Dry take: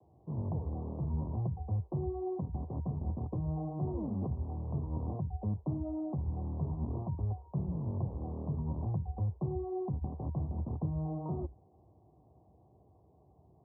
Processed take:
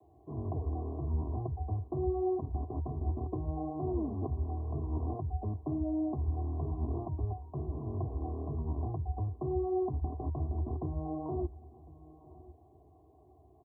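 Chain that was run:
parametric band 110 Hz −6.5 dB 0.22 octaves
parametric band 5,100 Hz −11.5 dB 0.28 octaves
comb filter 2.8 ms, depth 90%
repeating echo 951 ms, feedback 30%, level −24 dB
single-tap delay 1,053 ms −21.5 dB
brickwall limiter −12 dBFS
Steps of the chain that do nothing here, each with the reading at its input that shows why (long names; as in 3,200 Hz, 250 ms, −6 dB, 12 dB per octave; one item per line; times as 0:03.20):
parametric band 5,100 Hz: nothing at its input above 810 Hz
brickwall limiter −12 dBFS: peak of its input −21.5 dBFS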